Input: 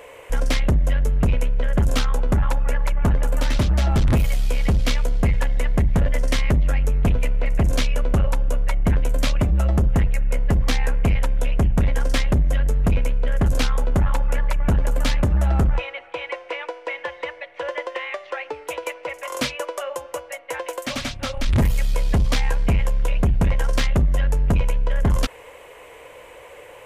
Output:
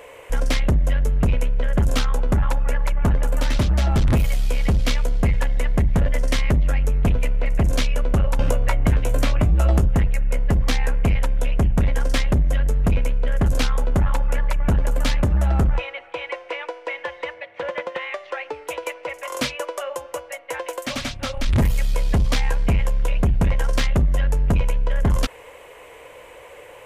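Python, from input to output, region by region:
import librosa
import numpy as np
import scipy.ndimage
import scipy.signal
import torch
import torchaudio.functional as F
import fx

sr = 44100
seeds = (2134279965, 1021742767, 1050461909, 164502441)

y = fx.chain(x, sr, fx.doubler(ms=18.0, db=-7.0),
    fx.band_squash(depth_pct=100), at=(8.39, 9.85))
y = fx.chain(y, sr, fx.highpass(hz=77.0, slope=12),
    fx.bass_treble(bass_db=7, treble_db=-4),
    fx.doppler_dist(depth_ms=0.2), at=(17.34, 18.02))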